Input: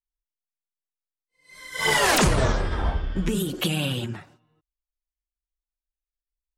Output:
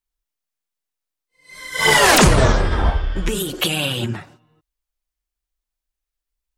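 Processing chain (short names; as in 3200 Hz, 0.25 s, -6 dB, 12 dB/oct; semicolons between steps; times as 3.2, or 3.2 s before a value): 2.9–4 bell 190 Hz -10 dB 1.5 oct; gain +7.5 dB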